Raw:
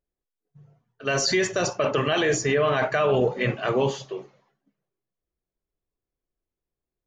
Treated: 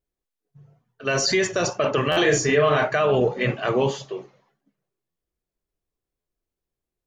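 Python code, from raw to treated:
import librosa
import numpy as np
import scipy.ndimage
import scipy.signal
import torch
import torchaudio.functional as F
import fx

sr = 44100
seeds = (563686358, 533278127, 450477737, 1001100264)

y = fx.wow_flutter(x, sr, seeds[0], rate_hz=2.1, depth_cents=29.0)
y = fx.doubler(y, sr, ms=34.0, db=-3.0, at=(2.12, 2.83))
y = fx.buffer_glitch(y, sr, at_s=(2.11, 5.1, 6.2), block=512, repeats=4)
y = F.gain(torch.from_numpy(y), 1.5).numpy()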